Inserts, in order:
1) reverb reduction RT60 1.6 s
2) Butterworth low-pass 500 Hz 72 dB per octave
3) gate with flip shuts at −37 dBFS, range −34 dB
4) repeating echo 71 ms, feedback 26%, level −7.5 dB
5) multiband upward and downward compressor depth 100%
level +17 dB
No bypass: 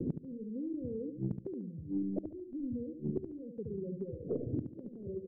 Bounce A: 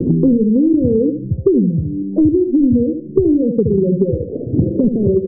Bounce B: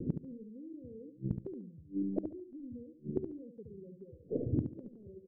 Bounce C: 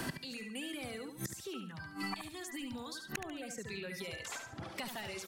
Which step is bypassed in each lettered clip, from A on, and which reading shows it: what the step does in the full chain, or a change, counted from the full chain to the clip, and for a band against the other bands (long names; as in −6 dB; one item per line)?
3, change in momentary loudness spread −1 LU
5, change in crest factor +5.5 dB
2, change in crest factor +8.5 dB